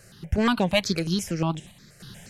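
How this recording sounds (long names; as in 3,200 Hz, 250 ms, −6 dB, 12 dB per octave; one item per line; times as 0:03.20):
sample-and-hold tremolo 3.5 Hz
notches that jump at a steady rate 8.4 Hz 940–4,500 Hz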